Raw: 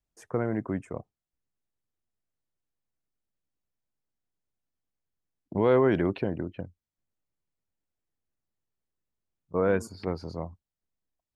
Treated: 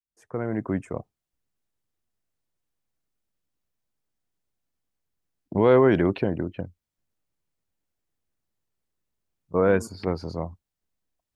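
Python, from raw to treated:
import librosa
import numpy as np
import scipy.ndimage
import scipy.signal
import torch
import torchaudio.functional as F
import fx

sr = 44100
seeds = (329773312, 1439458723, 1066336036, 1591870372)

y = fx.fade_in_head(x, sr, length_s=0.75)
y = F.gain(torch.from_numpy(y), 4.5).numpy()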